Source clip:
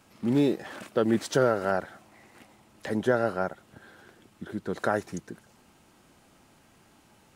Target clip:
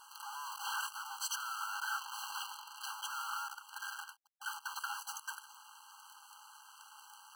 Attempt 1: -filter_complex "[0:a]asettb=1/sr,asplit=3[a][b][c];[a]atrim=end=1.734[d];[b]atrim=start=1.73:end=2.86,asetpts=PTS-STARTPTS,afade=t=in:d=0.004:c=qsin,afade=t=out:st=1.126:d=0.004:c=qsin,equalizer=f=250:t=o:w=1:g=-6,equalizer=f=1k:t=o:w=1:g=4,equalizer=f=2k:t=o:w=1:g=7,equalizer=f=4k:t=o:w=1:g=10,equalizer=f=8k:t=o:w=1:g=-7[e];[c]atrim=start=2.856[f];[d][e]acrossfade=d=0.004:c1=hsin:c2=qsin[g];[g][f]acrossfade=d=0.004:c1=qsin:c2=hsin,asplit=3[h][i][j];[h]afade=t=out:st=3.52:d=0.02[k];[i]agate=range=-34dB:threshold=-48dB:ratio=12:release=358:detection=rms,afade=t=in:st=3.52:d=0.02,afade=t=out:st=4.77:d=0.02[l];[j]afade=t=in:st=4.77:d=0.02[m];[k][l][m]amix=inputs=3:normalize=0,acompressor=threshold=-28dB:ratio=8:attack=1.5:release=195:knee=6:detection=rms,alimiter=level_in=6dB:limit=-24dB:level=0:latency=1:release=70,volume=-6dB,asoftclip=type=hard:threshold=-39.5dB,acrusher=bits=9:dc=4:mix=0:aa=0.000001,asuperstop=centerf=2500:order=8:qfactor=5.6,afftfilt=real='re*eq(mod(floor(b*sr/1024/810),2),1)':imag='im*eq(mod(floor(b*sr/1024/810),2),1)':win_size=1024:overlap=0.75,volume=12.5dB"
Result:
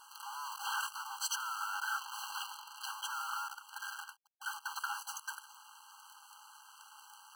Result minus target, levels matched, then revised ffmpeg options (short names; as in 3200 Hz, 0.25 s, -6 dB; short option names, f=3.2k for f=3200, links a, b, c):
hard clip: distortion -5 dB
-filter_complex "[0:a]asettb=1/sr,asplit=3[a][b][c];[a]atrim=end=1.734[d];[b]atrim=start=1.73:end=2.86,asetpts=PTS-STARTPTS,afade=t=in:d=0.004:c=qsin,afade=t=out:st=1.126:d=0.004:c=qsin,equalizer=f=250:t=o:w=1:g=-6,equalizer=f=1k:t=o:w=1:g=4,equalizer=f=2k:t=o:w=1:g=7,equalizer=f=4k:t=o:w=1:g=10,equalizer=f=8k:t=o:w=1:g=-7[e];[c]atrim=start=2.856[f];[d][e]acrossfade=d=0.004:c1=hsin:c2=qsin[g];[g][f]acrossfade=d=0.004:c1=qsin:c2=hsin,asplit=3[h][i][j];[h]afade=t=out:st=3.52:d=0.02[k];[i]agate=range=-34dB:threshold=-48dB:ratio=12:release=358:detection=rms,afade=t=in:st=3.52:d=0.02,afade=t=out:st=4.77:d=0.02[l];[j]afade=t=in:st=4.77:d=0.02[m];[k][l][m]amix=inputs=3:normalize=0,acompressor=threshold=-28dB:ratio=8:attack=1.5:release=195:knee=6:detection=rms,alimiter=level_in=6dB:limit=-24dB:level=0:latency=1:release=70,volume=-6dB,asoftclip=type=hard:threshold=-46.5dB,acrusher=bits=9:dc=4:mix=0:aa=0.000001,asuperstop=centerf=2500:order=8:qfactor=5.6,afftfilt=real='re*eq(mod(floor(b*sr/1024/810),2),1)':imag='im*eq(mod(floor(b*sr/1024/810),2),1)':win_size=1024:overlap=0.75,volume=12.5dB"